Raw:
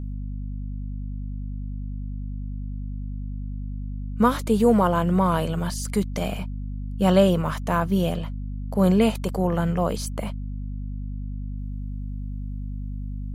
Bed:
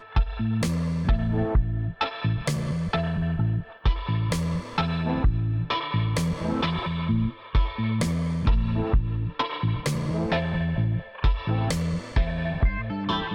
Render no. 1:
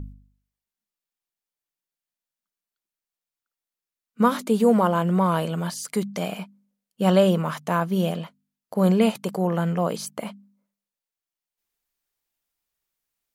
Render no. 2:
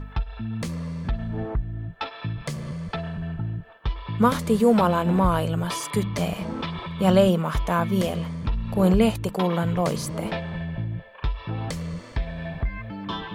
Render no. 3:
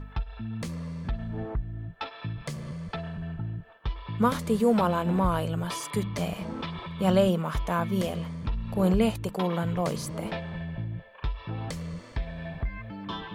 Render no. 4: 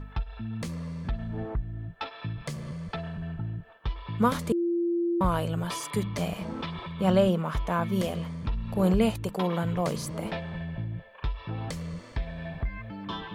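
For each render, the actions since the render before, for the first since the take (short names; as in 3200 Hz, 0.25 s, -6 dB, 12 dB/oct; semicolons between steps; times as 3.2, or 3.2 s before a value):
de-hum 50 Hz, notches 5
add bed -5 dB
gain -4.5 dB
4.52–5.21 bleep 343 Hz -23.5 dBFS; 6.91–7.83 high shelf 5200 Hz -6 dB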